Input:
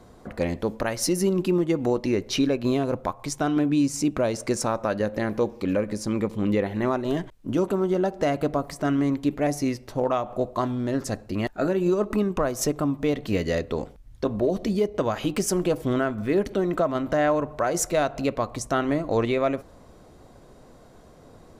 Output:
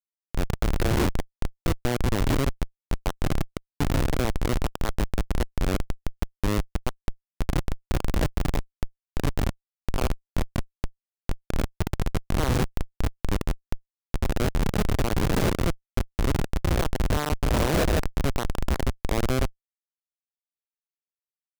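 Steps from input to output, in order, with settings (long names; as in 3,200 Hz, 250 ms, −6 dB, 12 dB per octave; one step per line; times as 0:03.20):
peak hold with a rise ahead of every peak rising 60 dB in 2.48 s
comparator with hysteresis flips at −13 dBFS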